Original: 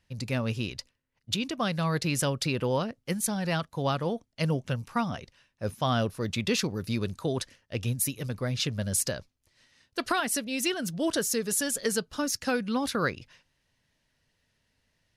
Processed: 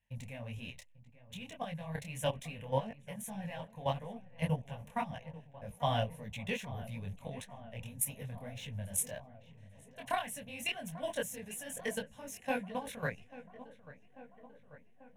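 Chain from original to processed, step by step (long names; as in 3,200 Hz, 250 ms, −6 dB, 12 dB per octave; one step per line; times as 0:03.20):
parametric band 74 Hz −5.5 dB 0.57 octaves
output level in coarse steps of 13 dB
in parallel at −5 dB: slack as between gear wheels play −37.5 dBFS
on the sum: phaser with its sweep stopped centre 1,300 Hz, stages 6
on a send: feedback echo with a low-pass in the loop 841 ms, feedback 70%, low-pass 2,100 Hz, level −16 dB
on the sum: micro pitch shift up and down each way 60 cents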